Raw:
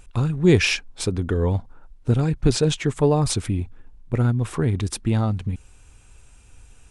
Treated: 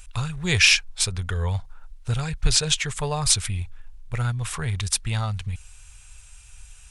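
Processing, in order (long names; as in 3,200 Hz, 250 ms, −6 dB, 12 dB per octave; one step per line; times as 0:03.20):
guitar amp tone stack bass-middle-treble 10-0-10
level +8.5 dB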